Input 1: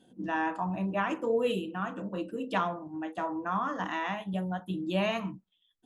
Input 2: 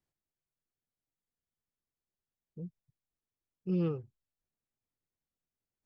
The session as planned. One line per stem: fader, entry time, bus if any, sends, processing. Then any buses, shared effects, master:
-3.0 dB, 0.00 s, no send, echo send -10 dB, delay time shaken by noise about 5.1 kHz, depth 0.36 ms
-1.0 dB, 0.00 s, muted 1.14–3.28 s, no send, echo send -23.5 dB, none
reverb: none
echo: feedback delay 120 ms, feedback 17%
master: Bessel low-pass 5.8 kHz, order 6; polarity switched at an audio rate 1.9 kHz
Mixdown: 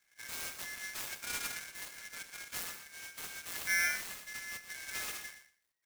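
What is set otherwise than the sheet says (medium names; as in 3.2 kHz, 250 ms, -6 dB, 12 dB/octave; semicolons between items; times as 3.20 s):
stem 1 -3.0 dB -> -12.0 dB; master: missing Bessel low-pass 5.8 kHz, order 6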